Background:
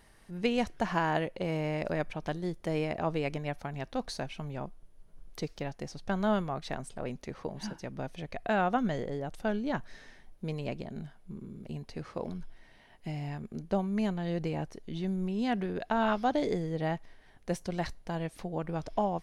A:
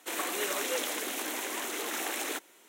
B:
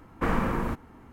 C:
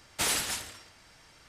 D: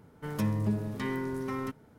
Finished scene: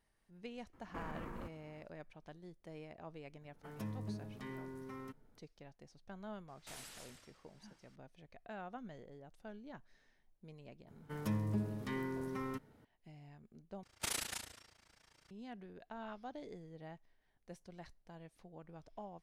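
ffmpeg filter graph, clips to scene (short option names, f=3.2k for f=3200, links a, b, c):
-filter_complex "[4:a]asplit=2[a][b];[3:a]asplit=2[c][d];[0:a]volume=-19.5dB[e];[2:a]acompressor=threshold=-28dB:ratio=6:attack=3.2:release=140:knee=1:detection=peak[f];[c]alimiter=level_in=3.5dB:limit=-24dB:level=0:latency=1:release=130,volume=-3.5dB[g];[d]tremolo=f=28:d=0.919[h];[e]asplit=2[i][j];[i]atrim=end=13.834[k];[h]atrim=end=1.48,asetpts=PTS-STARTPTS,volume=-7dB[l];[j]atrim=start=15.306[m];[f]atrim=end=1.12,asetpts=PTS-STARTPTS,volume=-13.5dB,afade=t=in:d=0.004:c=hsin,afade=t=out:st=1.116:d=0.004:c=hsin,adelay=730[n];[a]atrim=end=1.98,asetpts=PTS-STARTPTS,volume=-14dB,afade=t=in:d=0.004:c=hsin,afade=t=out:st=1.976:d=0.004:c=hsin,adelay=150381S[o];[g]atrim=end=1.48,asetpts=PTS-STARTPTS,volume=-16dB,afade=t=in:d=0.004:c=hsin,afade=t=out:st=1.476:d=0.004:c=hsin,adelay=6480[p];[b]atrim=end=1.98,asetpts=PTS-STARTPTS,volume=-7dB,afade=t=in:d=0.004:c=hsin,afade=t=out:st=1.976:d=0.004:c=hsin,adelay=10870[q];[k][l]acrossfade=d=0.004:c1=hsin:c2=hsin[r];[r][m]acrossfade=d=0.004:c1=hsin:c2=hsin[s];[s][n][o][p][q]amix=inputs=5:normalize=0"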